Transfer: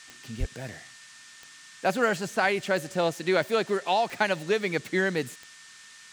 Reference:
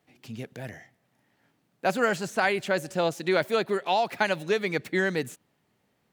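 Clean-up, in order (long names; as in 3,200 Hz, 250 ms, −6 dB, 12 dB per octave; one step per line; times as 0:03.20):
click removal
notch filter 1,800 Hz, Q 30
0:00.39–0:00.51: high-pass filter 140 Hz 24 dB per octave
noise reduction from a noise print 22 dB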